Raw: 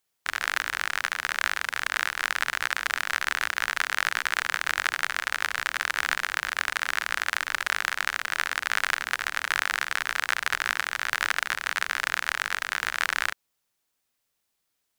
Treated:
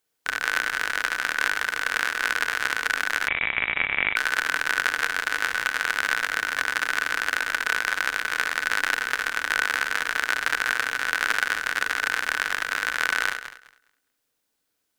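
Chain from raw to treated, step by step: regenerating reverse delay 0.103 s, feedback 43%, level -7 dB; small resonant body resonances 290/460/1500 Hz, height 9 dB, ringing for 45 ms; 3.28–4.16 inverted band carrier 3800 Hz

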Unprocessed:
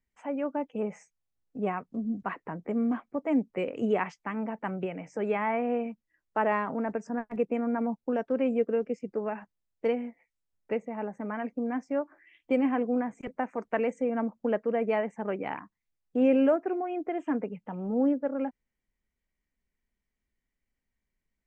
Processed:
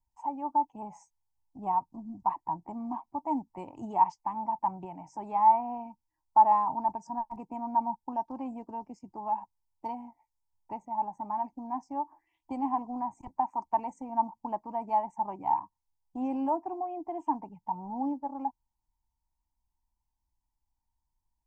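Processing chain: EQ curve 100 Hz 0 dB, 220 Hz -14 dB, 330 Hz -7 dB, 470 Hz -29 dB, 920 Hz +12 dB, 1400 Hz -26 dB, 3300 Hz -19 dB, 4800 Hz -5 dB; gain +3 dB

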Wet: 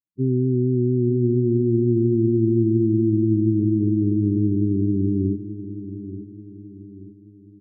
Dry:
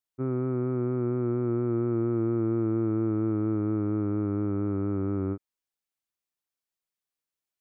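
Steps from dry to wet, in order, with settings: bell 160 Hz +6.5 dB 2 oct; loudest bins only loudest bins 8; feedback echo 0.882 s, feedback 43%, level -12.5 dB; gain +4 dB

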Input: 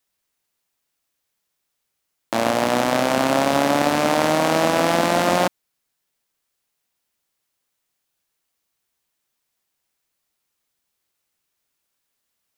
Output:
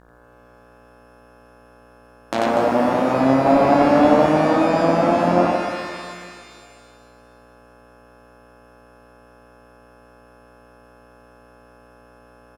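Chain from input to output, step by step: buzz 60 Hz, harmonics 29, -51 dBFS -3 dB/oct; treble ducked by the level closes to 860 Hz, closed at -14.5 dBFS; on a send: loudspeakers at several distances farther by 18 m -11 dB, 31 m -1 dB, 83 m -9 dB; 3.45–4.26 on the sum: sample leveller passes 1; shimmer reverb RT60 1.9 s, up +12 st, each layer -8 dB, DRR 4.5 dB; gain -1 dB

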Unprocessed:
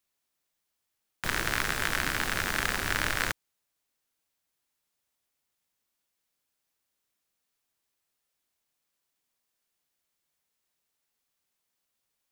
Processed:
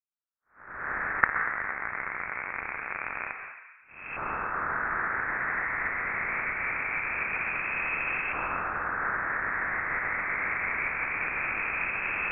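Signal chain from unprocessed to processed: per-bin compression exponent 0.4; recorder AGC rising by 30 dB/s; gate -32 dBFS, range -41 dB; bell 2300 Hz -10 dB 1.4 oct; sample leveller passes 3; LFO high-pass saw down 0.24 Hz 290–1800 Hz; plate-style reverb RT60 1.4 s, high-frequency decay 0.3×, pre-delay 0.11 s, DRR 4.5 dB; inverted band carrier 2900 Hz; gain -14.5 dB

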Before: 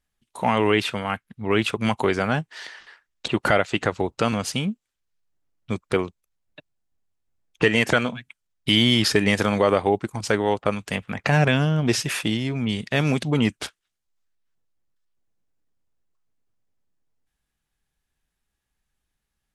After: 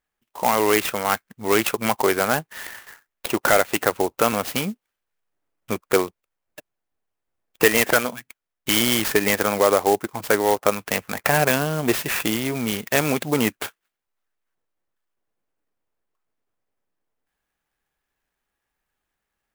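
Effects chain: tone controls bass -13 dB, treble -9 dB; in parallel at -2 dB: vocal rider 0.5 s; on the sum: clock jitter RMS 0.053 ms; gain -1 dB

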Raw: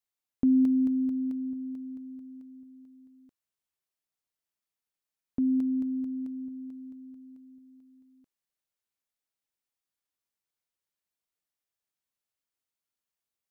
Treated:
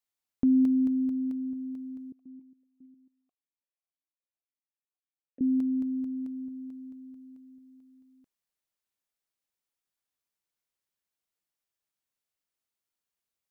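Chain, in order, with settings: 2.12–5.41 vowel sequencer 7.3 Hz

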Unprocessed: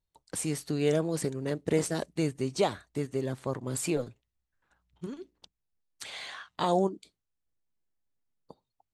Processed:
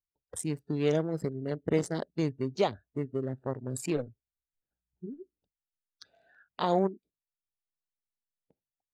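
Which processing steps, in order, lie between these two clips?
Wiener smoothing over 41 samples; spectral noise reduction 16 dB

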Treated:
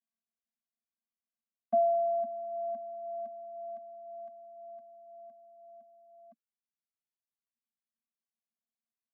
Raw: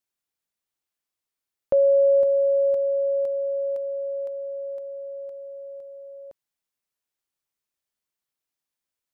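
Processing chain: vocoder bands 16, square 227 Hz; reverb removal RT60 1.7 s; gain -5.5 dB

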